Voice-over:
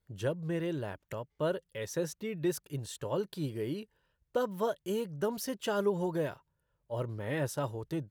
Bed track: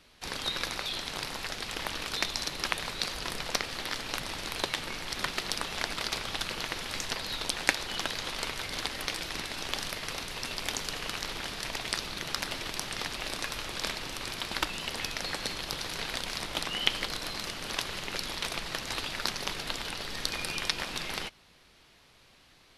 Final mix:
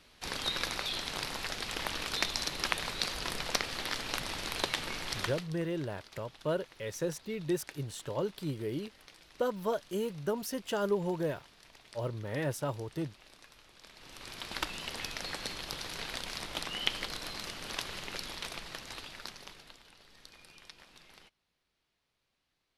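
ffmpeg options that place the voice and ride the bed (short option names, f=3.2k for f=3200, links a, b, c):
-filter_complex "[0:a]adelay=5050,volume=-0.5dB[a];[1:a]volume=16.5dB,afade=t=out:st=5.14:d=0.34:silence=0.0891251,afade=t=in:st=13.9:d=0.72:silence=0.133352,afade=t=out:st=18:d=1.8:silence=0.133352[b];[a][b]amix=inputs=2:normalize=0"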